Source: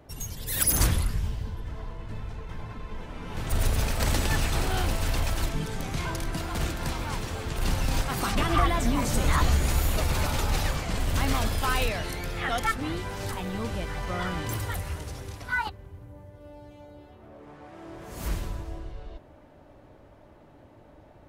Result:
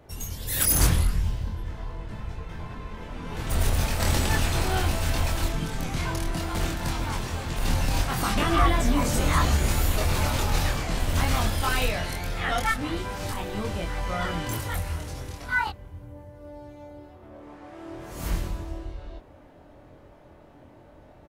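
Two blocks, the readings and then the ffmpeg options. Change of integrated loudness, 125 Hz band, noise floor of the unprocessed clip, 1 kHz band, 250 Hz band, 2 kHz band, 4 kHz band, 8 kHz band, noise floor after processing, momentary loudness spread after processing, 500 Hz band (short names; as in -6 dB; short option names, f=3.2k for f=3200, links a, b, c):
+2.0 dB, +2.0 dB, -53 dBFS, +2.0 dB, +2.0 dB, +2.0 dB, +2.0 dB, +2.0 dB, -51 dBFS, 20 LU, +1.5 dB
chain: -filter_complex "[0:a]asplit=2[a][b];[b]adelay=24,volume=-2.5dB[c];[a][c]amix=inputs=2:normalize=0"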